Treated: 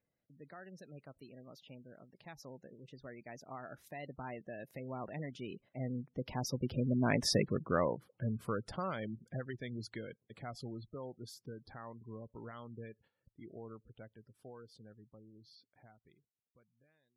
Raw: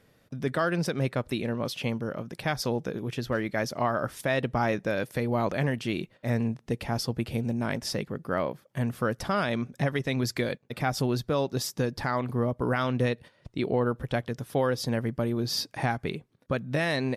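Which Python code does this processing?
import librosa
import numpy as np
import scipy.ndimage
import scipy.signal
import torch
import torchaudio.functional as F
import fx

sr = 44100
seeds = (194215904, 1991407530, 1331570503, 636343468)

y = fx.fade_out_tail(x, sr, length_s=3.27)
y = fx.doppler_pass(y, sr, speed_mps=27, closest_m=10.0, pass_at_s=7.33)
y = fx.spec_gate(y, sr, threshold_db=-20, keep='strong')
y = y * 10.0 ** (1.0 / 20.0)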